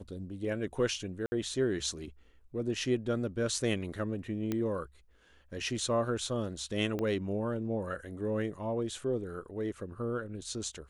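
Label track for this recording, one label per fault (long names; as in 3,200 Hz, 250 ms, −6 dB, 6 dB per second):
1.260000	1.320000	drop-out 60 ms
4.520000	4.520000	click −19 dBFS
6.990000	6.990000	click −22 dBFS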